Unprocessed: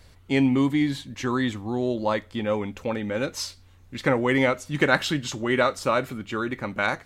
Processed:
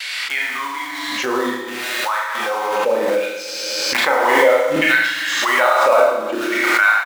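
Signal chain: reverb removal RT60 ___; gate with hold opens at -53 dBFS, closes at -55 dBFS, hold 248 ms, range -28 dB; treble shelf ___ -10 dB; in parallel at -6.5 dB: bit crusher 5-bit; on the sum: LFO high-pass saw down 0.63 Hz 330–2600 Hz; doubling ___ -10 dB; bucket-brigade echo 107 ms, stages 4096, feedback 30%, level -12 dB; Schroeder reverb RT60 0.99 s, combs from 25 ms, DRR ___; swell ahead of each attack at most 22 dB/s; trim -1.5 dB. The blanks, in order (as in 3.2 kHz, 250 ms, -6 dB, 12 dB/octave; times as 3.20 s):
1.8 s, 3.8 kHz, 31 ms, -3.5 dB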